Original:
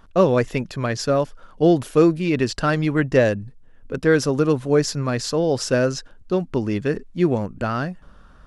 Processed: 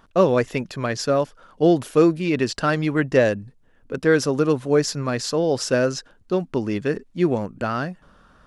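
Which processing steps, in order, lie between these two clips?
low-shelf EQ 81 Hz −12 dB

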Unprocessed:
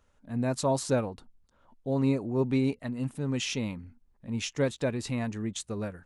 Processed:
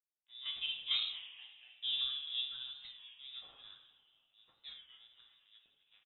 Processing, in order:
source passing by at 0:01.39, 12 m/s, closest 2.5 metres
high-pass filter 60 Hz 12 dB per octave
dead-zone distortion −58 dBFS
square-wave tremolo 2.2 Hz, depth 60%, duty 45%
on a send: echo with shifted repeats 239 ms, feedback 57%, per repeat +150 Hz, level −17.5 dB
on the sum: coupled-rooms reverb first 0.76 s, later 2.3 s, from −18 dB, DRR 0.5 dB
voice inversion scrambler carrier 3,700 Hz
wow of a warped record 33 1/3 rpm, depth 100 cents

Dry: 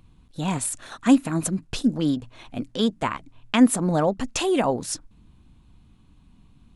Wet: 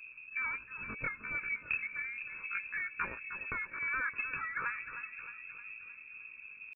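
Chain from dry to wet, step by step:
parametric band 62 Hz +6.5 dB 1.1 octaves
downward compressor 10 to 1, threshold −28 dBFS, peak gain reduction 18 dB
surface crackle 260 per second −44 dBFS
phaser with its sweep stopped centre 1,600 Hz, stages 8
pitch shifter +9.5 semitones
on a send: echo with a time of its own for lows and highs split 520 Hz, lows 471 ms, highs 309 ms, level −10.5 dB
on the sum: voice inversion scrambler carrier 2,600 Hz

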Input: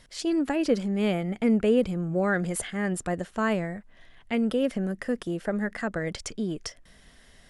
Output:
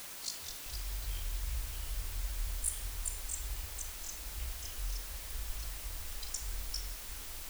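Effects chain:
sub-octave generator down 1 octave, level +1 dB
all-pass dispersion highs, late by 85 ms, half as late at 710 Hz
amplitude modulation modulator 53 Hz, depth 100%
noise reduction from a noise print of the clip's start 13 dB
feedback echo with a low-pass in the loop 165 ms, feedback 32%, level −13.5 dB
delay with pitch and tempo change per echo 151 ms, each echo −3 semitones, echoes 3, each echo −6 dB
inverse Chebyshev band-stop filter 230–920 Hz, stop band 80 dB
convolution reverb RT60 0.45 s, pre-delay 26 ms, DRR 8 dB
bit-depth reduction 8 bits, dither triangular
level +2 dB

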